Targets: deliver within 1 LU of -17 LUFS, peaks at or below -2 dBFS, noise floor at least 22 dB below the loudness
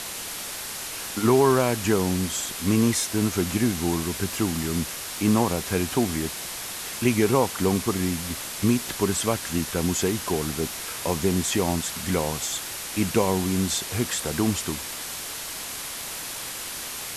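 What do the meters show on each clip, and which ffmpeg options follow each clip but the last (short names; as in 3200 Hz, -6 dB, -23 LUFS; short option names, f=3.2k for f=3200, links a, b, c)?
noise floor -35 dBFS; noise floor target -47 dBFS; loudness -25.0 LUFS; peak -7.0 dBFS; loudness target -17.0 LUFS
-> -af "afftdn=nr=12:nf=-35"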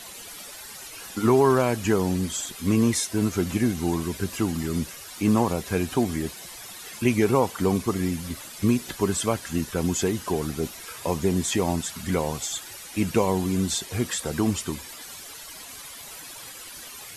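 noise floor -42 dBFS; noise floor target -48 dBFS
-> -af "afftdn=nr=6:nf=-42"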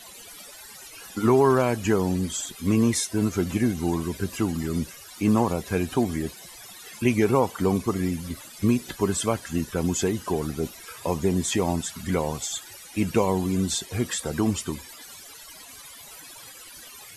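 noise floor -45 dBFS; noise floor target -48 dBFS
-> -af "afftdn=nr=6:nf=-45"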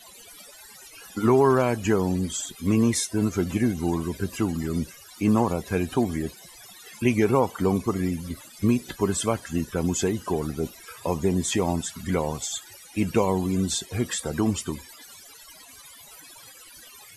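noise floor -48 dBFS; loudness -25.5 LUFS; peak -8.0 dBFS; loudness target -17.0 LUFS
-> -af "volume=8.5dB,alimiter=limit=-2dB:level=0:latency=1"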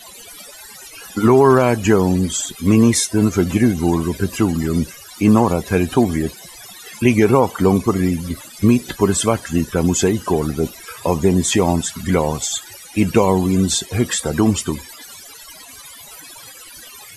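loudness -17.0 LUFS; peak -2.0 dBFS; noise floor -39 dBFS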